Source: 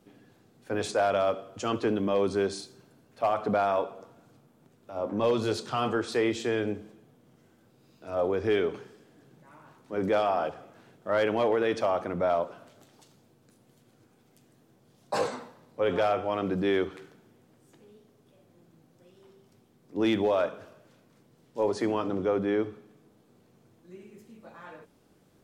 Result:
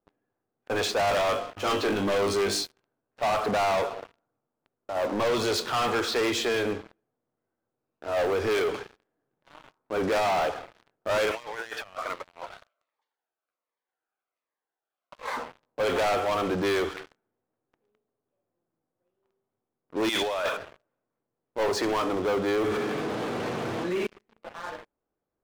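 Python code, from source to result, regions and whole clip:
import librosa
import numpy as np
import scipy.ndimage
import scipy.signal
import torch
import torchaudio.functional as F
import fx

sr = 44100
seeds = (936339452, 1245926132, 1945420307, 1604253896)

y = fx.chain(x, sr, fx.gate_hold(open_db=-34.0, close_db=-42.0, hold_ms=71.0, range_db=-21, attack_ms=1.4, release_ms=100.0),
    fx.room_flutter(wall_m=3.4, rt60_s=0.23), at=(1.05, 2.63))
y = fx.chain(y, sr, fx.highpass(hz=1100.0, slope=12),
    fx.over_compress(threshold_db=-41.0, ratio=-0.5),
    fx.notch_cascade(direction='falling', hz=1.3), at=(11.31, 15.37))
y = fx.chain(y, sr, fx.tilt_eq(slope=4.0),
    fx.over_compress(threshold_db=-32.0, ratio=-0.5), at=(20.09, 20.57))
y = fx.chain(y, sr, fx.highpass(hz=100.0, slope=24),
    fx.env_flatten(amount_pct=70), at=(22.58, 24.07))
y = fx.env_lowpass(y, sr, base_hz=1300.0, full_db=-21.5)
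y = fx.peak_eq(y, sr, hz=160.0, db=-13.5, octaves=2.3)
y = fx.leveller(y, sr, passes=5)
y = y * librosa.db_to_amplitude(-5.5)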